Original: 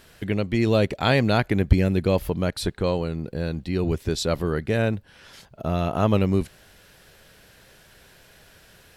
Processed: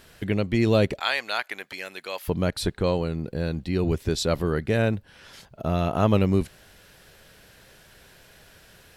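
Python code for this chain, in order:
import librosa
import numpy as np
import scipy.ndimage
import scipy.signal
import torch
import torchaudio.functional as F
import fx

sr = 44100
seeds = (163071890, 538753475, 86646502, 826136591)

y = fx.highpass(x, sr, hz=1100.0, slope=12, at=(0.99, 2.28))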